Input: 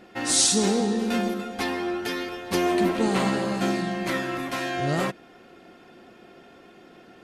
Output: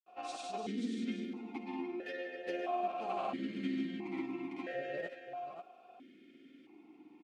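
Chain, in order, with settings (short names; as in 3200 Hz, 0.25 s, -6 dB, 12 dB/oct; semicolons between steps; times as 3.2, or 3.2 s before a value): in parallel at -0.5 dB: compressor, threshold -32 dBFS, peak gain reduction 14.5 dB; on the sum: grains, pitch spread up and down by 0 st; bit-crush 9-bit; on a send: echo 0.531 s -9 dB; on the sum: vowel sequencer 1.5 Hz; gain -4 dB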